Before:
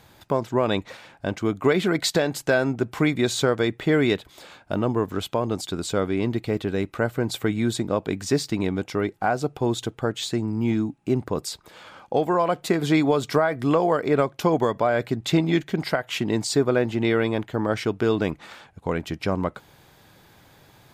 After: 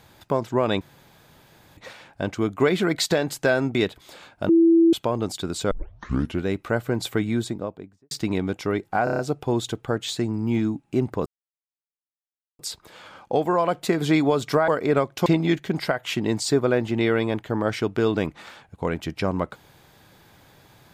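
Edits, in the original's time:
0.81 insert room tone 0.96 s
2.79–4.04 cut
4.78–5.22 bleep 332 Hz -12 dBFS
6 tape start 0.75 s
7.47–8.4 studio fade out
9.33 stutter 0.03 s, 6 plays
11.4 insert silence 1.33 s
13.49–13.9 cut
14.48–15.3 cut

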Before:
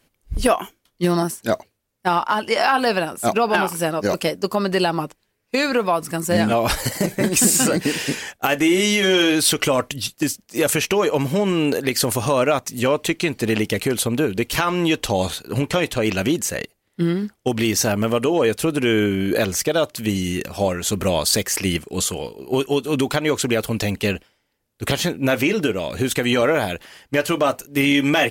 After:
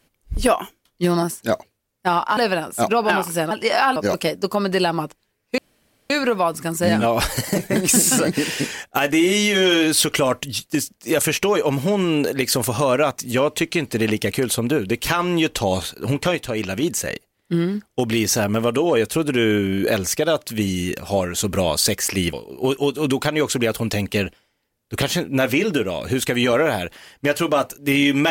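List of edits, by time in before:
2.37–2.82 move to 3.96
5.58 insert room tone 0.52 s
15.83–16.31 gain -4 dB
21.81–22.22 cut

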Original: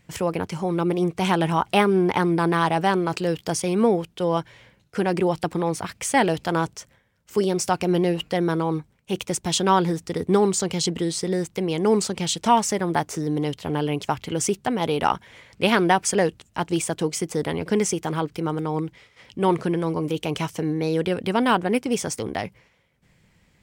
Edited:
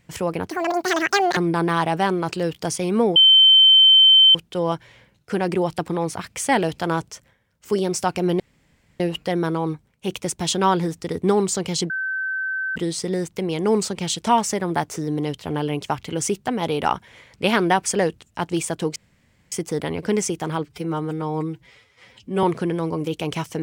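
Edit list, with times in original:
0.5–2.21 speed 197%
4 add tone 3090 Hz -8.5 dBFS 1.19 s
8.05 insert room tone 0.60 s
10.95 add tone 1540 Hz -22.5 dBFS 0.86 s
17.15 insert room tone 0.56 s
18.28–19.47 stretch 1.5×

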